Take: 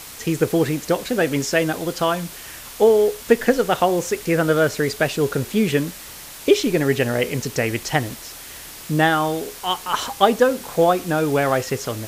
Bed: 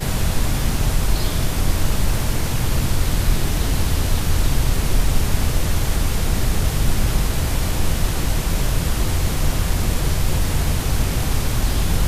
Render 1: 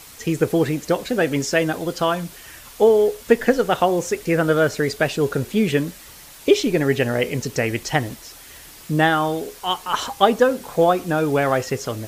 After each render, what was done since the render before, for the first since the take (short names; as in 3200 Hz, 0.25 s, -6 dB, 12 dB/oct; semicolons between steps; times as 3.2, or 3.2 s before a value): denoiser 6 dB, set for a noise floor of -38 dBFS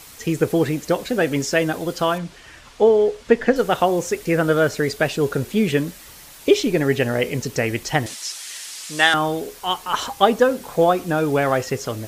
2.18–3.56 air absorption 84 m; 8.06–9.14 weighting filter ITU-R 468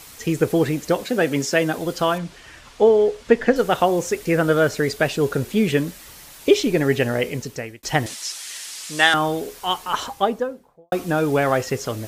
1.03–1.78 HPF 120 Hz 24 dB/oct; 6.9–7.83 fade out equal-power; 9.77–10.92 studio fade out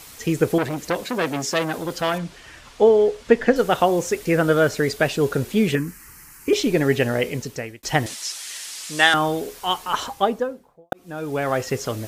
0.58–2.14 core saturation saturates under 2100 Hz; 5.75–6.53 fixed phaser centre 1500 Hz, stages 4; 10.93–11.77 fade in linear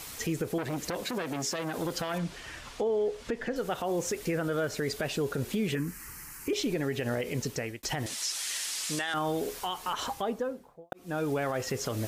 compressor 2.5:1, threshold -27 dBFS, peak gain reduction 12.5 dB; limiter -22 dBFS, peak gain reduction 10 dB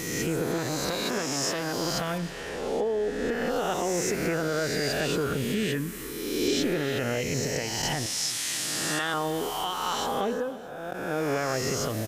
spectral swells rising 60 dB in 1.54 s; feedback echo 0.312 s, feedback 37%, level -17.5 dB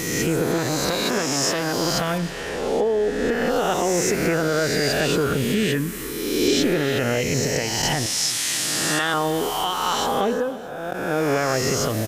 gain +6.5 dB